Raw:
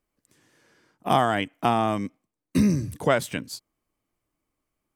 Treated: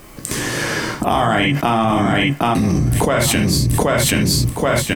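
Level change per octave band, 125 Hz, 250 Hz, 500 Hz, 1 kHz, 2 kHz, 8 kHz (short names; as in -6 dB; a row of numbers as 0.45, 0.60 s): +14.0, +9.5, +9.0, +7.5, +13.0, +20.0 dB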